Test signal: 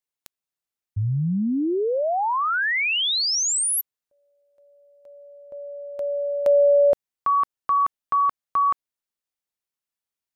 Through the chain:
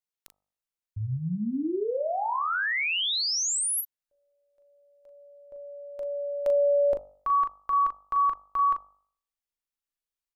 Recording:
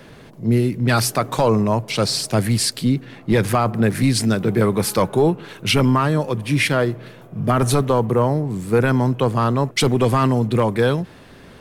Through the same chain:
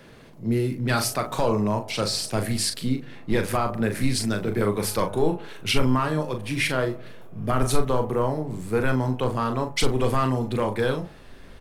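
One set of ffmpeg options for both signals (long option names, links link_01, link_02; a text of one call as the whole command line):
ffmpeg -i in.wav -filter_complex "[0:a]asplit=2[link_01][link_02];[link_02]adelay=39,volume=-7.5dB[link_03];[link_01][link_03]amix=inputs=2:normalize=0,asubboost=boost=6.5:cutoff=51,bandreject=frequency=49.54:width_type=h:width=4,bandreject=frequency=99.08:width_type=h:width=4,bandreject=frequency=148.62:width_type=h:width=4,bandreject=frequency=198.16:width_type=h:width=4,bandreject=frequency=247.7:width_type=h:width=4,bandreject=frequency=297.24:width_type=h:width=4,bandreject=frequency=346.78:width_type=h:width=4,bandreject=frequency=396.32:width_type=h:width=4,bandreject=frequency=445.86:width_type=h:width=4,bandreject=frequency=495.4:width_type=h:width=4,bandreject=frequency=544.94:width_type=h:width=4,bandreject=frequency=594.48:width_type=h:width=4,bandreject=frequency=644.02:width_type=h:width=4,bandreject=frequency=693.56:width_type=h:width=4,bandreject=frequency=743.1:width_type=h:width=4,bandreject=frequency=792.64:width_type=h:width=4,bandreject=frequency=842.18:width_type=h:width=4,bandreject=frequency=891.72:width_type=h:width=4,bandreject=frequency=941.26:width_type=h:width=4,bandreject=frequency=990.8:width_type=h:width=4,bandreject=frequency=1040.34:width_type=h:width=4,bandreject=frequency=1089.88:width_type=h:width=4,bandreject=frequency=1139.42:width_type=h:width=4,bandreject=frequency=1188.96:width_type=h:width=4,bandreject=frequency=1238.5:width_type=h:width=4,bandreject=frequency=1288.04:width_type=h:width=4,volume=-5.5dB" out.wav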